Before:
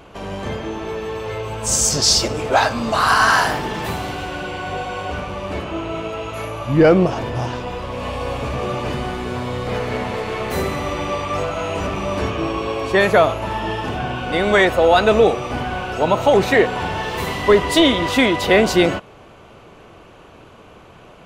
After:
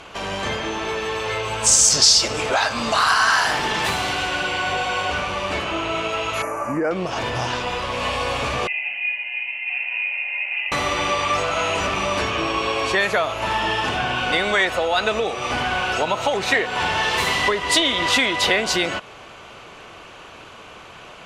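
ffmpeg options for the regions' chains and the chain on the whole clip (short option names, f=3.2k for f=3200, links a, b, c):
-filter_complex "[0:a]asettb=1/sr,asplit=3[a][b][c];[a]atrim=end=6.424[d];[b]atrim=start=6.42:end=6.91,asetpts=PTS-STARTPTS,afade=t=in:d=0.004:c=qsin,afade=t=out:st=0.486:d=0.004:c=qsin,asuperstop=centerf=3600:order=4:qfactor=0.7,lowshelf=f=170:t=q:w=1.5:g=-9[e];[c]atrim=start=6.906[f];[d][e]acrossfade=d=0.004:c1=hsin:c2=qsin[g];[g][f]acrossfade=d=0.004:c1=qsin:c2=hsin,asettb=1/sr,asplit=3[h][i][j];[h]atrim=end=8.674[k];[i]atrim=start=8.67:end=10.72,asetpts=PTS-STARTPTS,afade=t=in:d=0.004:c=qsin,afade=t=out:st=2.046:d=0.004:c=qsin,asplit=3[l][m][n];[l]bandpass=f=730:t=q:w=8,volume=0dB[o];[m]bandpass=f=1.09k:t=q:w=8,volume=-6dB[p];[n]bandpass=f=2.44k:t=q:w=8,volume=-9dB[q];[o][p][q]amix=inputs=3:normalize=0,lowshelf=f=140:g=-6.5,lowpass=f=2.7k:t=q:w=0.5098,lowpass=f=2.7k:t=q:w=0.6013,lowpass=f=2.7k:t=q:w=0.9,lowpass=f=2.7k:t=q:w=2.563,afreqshift=-3200[r];[j]atrim=start=10.716[s];[k][r]acrossfade=d=0.004:c1=hsin:c2=qsin[t];[t][s]acrossfade=d=0.004:c1=qsin:c2=hsin,lowpass=9.1k,acompressor=threshold=-20dB:ratio=6,tiltshelf=f=800:g=-7,volume=3dB"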